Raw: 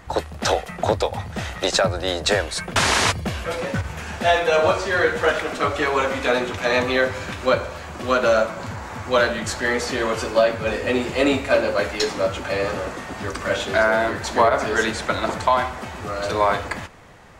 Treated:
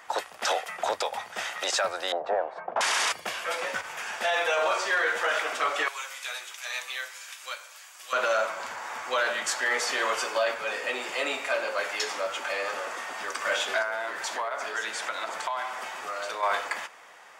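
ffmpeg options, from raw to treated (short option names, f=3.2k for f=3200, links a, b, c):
-filter_complex "[0:a]asettb=1/sr,asplit=3[a][b][c];[a]atrim=end=2.124[d];[b]atrim=start=2.12:end=2.81,asetpts=PTS-STARTPTS,afade=t=in:d=0.004:c=qsin,afade=t=out:st=0.686:d=0.004:c=qsin,lowpass=f=750:t=q:w=2.6[e];[c]atrim=start=2.806[f];[d][e]acrossfade=d=0.004:c1=hsin:c2=qsin[g];[g][f]acrossfade=d=0.004:c1=qsin:c2=hsin,asettb=1/sr,asplit=3[h][i][j];[h]atrim=end=5.884[k];[i]atrim=start=5.88:end=8.13,asetpts=PTS-STARTPTS,afade=t=in:d=0.004:c=qsin,afade=t=out:st=2.246:d=0.004:c=qsin,aderivative[l];[j]atrim=start=8.126[m];[k][l]acrossfade=d=0.004:c1=hsin:c2=qsin[n];[n][m]acrossfade=d=0.004:c1=qsin:c2=hsin,asettb=1/sr,asplit=3[o][p][q];[o]atrim=end=10.534[r];[p]atrim=start=10.53:end=13.3,asetpts=PTS-STARTPTS,afade=t=in:d=0.004:c=qsin,afade=t=out:st=2.766:d=0.004:c=qsin,acompressor=threshold=-26dB:ratio=1.5:attack=3.2:release=140:knee=1:detection=peak[s];[q]atrim=start=13.296[t];[r][s]acrossfade=d=0.004:c1=hsin:c2=qsin[u];[u][t]acrossfade=d=0.004:c1=qsin:c2=hsin,asettb=1/sr,asplit=3[v][w][x];[v]atrim=end=13.824[y];[w]atrim=start=13.82:end=16.43,asetpts=PTS-STARTPTS,afade=t=in:d=0.004:c=qsin,afade=t=out:st=2.606:d=0.004:c=qsin,acompressor=threshold=-26dB:ratio=4:attack=3.2:release=140:knee=1:detection=peak[z];[x]atrim=start=16.426[aa];[y][z]acrossfade=d=0.004:c1=hsin:c2=qsin[ab];[ab][aa]acrossfade=d=0.004:c1=qsin:c2=hsin,highpass=780,bandreject=f=4.1k:w=11,alimiter=limit=-17dB:level=0:latency=1:release=12"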